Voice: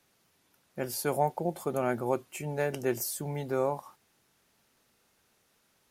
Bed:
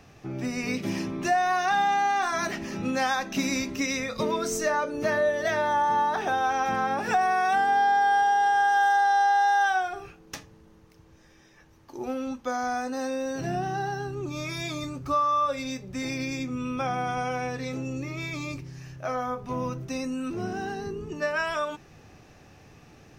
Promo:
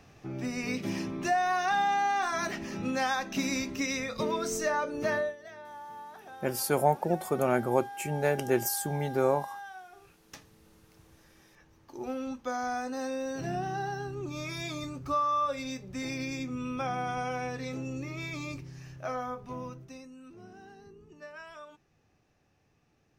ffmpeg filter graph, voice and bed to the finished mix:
-filter_complex "[0:a]adelay=5650,volume=1.41[s0];[1:a]volume=4.73,afade=t=out:st=5.15:d=0.21:silence=0.133352,afade=t=in:st=9.85:d=1.11:silence=0.141254,afade=t=out:st=19.04:d=1.04:silence=0.188365[s1];[s0][s1]amix=inputs=2:normalize=0"

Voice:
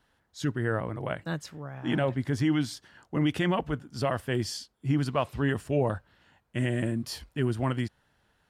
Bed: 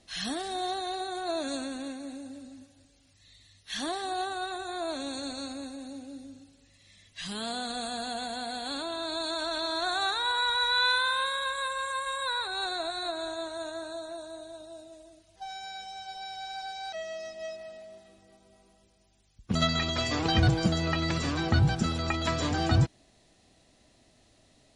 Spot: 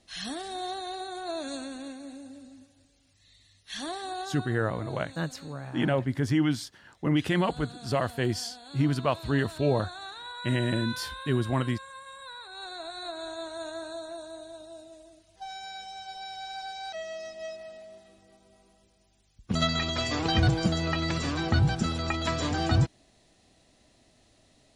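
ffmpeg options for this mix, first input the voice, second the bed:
-filter_complex "[0:a]adelay=3900,volume=1.12[s0];[1:a]volume=3.16,afade=t=out:st=4.11:d=0.46:silence=0.316228,afade=t=in:st=12.39:d=1.36:silence=0.237137[s1];[s0][s1]amix=inputs=2:normalize=0"

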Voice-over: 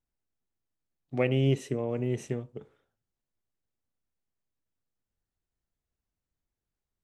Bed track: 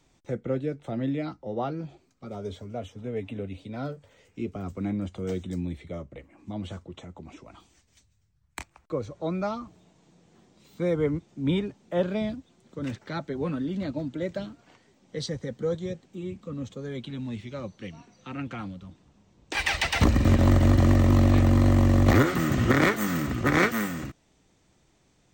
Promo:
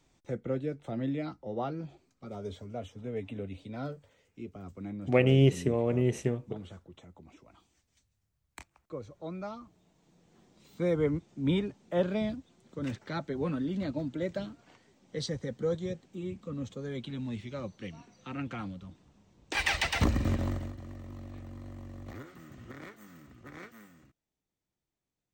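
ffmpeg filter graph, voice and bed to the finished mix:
-filter_complex "[0:a]adelay=3950,volume=1.41[s0];[1:a]volume=1.5,afade=t=out:st=3.98:d=0.25:silence=0.501187,afade=t=in:st=9.72:d=0.92:silence=0.421697,afade=t=out:st=19.7:d=1.04:silence=0.0707946[s1];[s0][s1]amix=inputs=2:normalize=0"

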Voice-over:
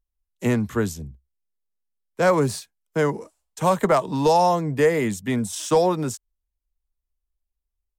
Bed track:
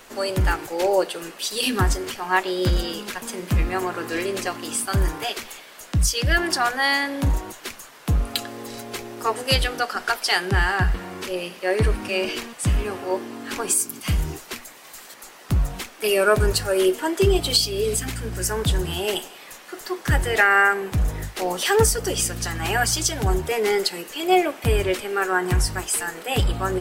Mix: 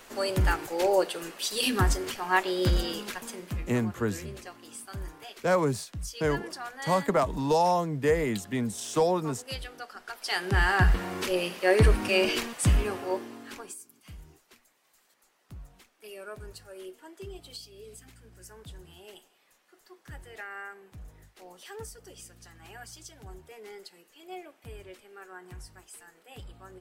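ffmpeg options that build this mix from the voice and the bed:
-filter_complex "[0:a]adelay=3250,volume=0.501[s0];[1:a]volume=4.73,afade=t=out:st=2.98:d=0.69:silence=0.211349,afade=t=in:st=10.13:d=0.8:silence=0.133352,afade=t=out:st=12.47:d=1.29:silence=0.0595662[s1];[s0][s1]amix=inputs=2:normalize=0"

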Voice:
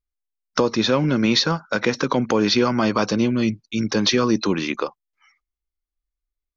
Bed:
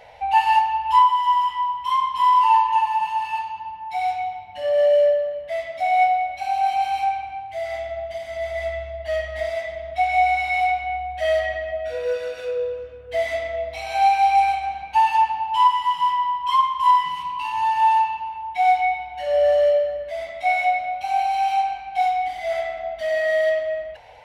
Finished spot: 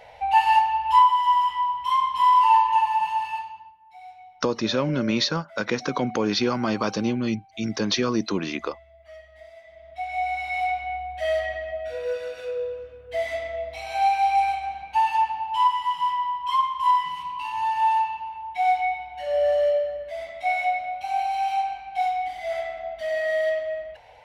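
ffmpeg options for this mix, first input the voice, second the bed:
-filter_complex "[0:a]adelay=3850,volume=0.562[s0];[1:a]volume=5.96,afade=t=out:st=3.14:d=0.61:silence=0.105925,afade=t=in:st=9.63:d=1.17:silence=0.149624[s1];[s0][s1]amix=inputs=2:normalize=0"

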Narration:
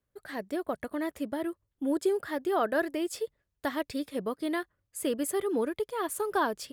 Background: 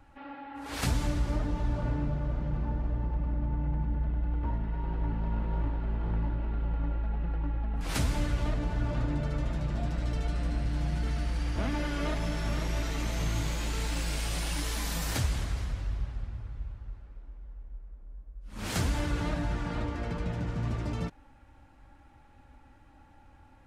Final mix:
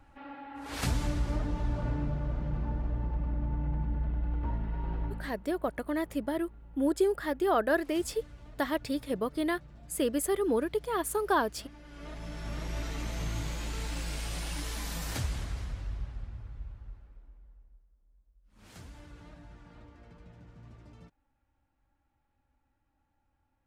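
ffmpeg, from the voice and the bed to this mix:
-filter_complex "[0:a]adelay=4950,volume=1.12[s0];[1:a]volume=5.62,afade=t=out:st=4.96:d=0.39:silence=0.112202,afade=t=in:st=11.83:d=0.99:silence=0.149624,afade=t=out:st=16.86:d=1.01:silence=0.158489[s1];[s0][s1]amix=inputs=2:normalize=0"

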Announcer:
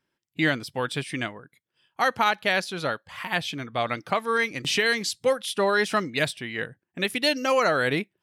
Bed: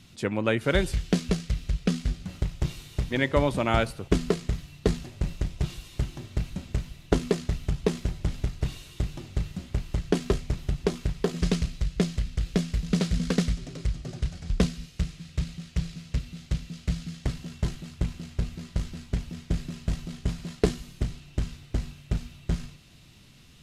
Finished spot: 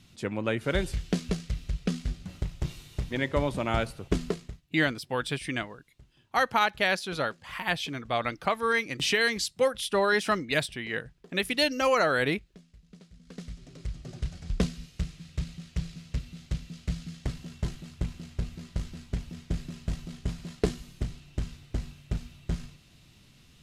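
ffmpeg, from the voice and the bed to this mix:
-filter_complex "[0:a]adelay=4350,volume=0.794[s0];[1:a]volume=10,afade=t=out:st=4.24:d=0.37:silence=0.0668344,afade=t=in:st=13.24:d=1.04:silence=0.0630957[s1];[s0][s1]amix=inputs=2:normalize=0"

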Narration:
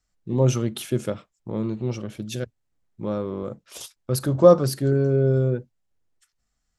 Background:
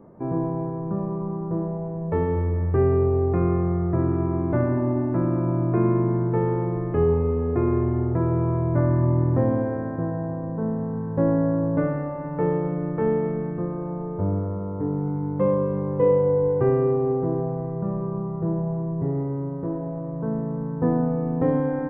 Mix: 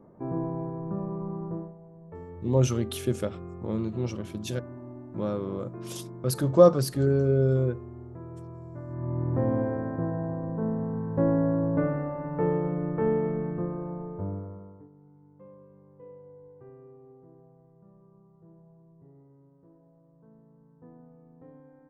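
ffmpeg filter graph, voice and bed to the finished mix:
-filter_complex "[0:a]adelay=2150,volume=0.708[s0];[1:a]volume=3.55,afade=t=out:st=1.45:d=0.29:silence=0.199526,afade=t=in:st=8.87:d=0.74:silence=0.149624,afade=t=out:st=13.57:d=1.32:silence=0.0473151[s1];[s0][s1]amix=inputs=2:normalize=0"

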